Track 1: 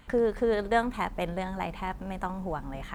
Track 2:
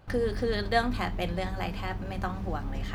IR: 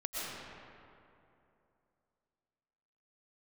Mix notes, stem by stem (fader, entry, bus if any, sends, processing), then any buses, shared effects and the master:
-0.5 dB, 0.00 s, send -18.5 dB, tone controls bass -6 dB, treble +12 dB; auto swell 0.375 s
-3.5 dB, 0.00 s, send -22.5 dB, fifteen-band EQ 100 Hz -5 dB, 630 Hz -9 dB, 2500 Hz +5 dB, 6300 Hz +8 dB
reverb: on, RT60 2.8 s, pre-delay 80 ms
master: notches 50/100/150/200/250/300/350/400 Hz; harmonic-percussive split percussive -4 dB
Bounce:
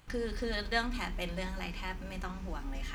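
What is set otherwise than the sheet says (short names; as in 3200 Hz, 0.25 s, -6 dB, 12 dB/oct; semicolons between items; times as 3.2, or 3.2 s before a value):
stem 1 -0.5 dB -> -11.0 dB; reverb return -8.5 dB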